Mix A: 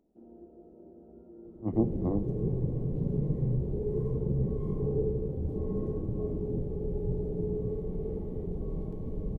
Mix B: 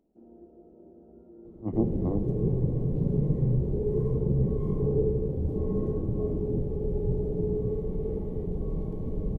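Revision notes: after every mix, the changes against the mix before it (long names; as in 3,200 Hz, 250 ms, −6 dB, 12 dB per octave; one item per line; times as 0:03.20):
second sound +4.0 dB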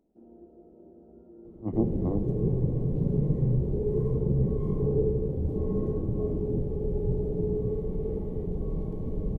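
nothing changed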